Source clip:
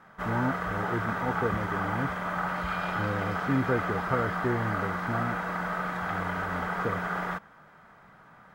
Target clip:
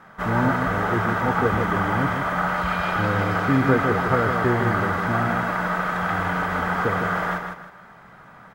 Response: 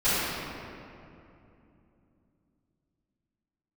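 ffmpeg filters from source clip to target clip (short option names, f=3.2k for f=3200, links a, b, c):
-af "aecho=1:1:157|314|471|628:0.501|0.155|0.0482|0.0149,volume=6.5dB"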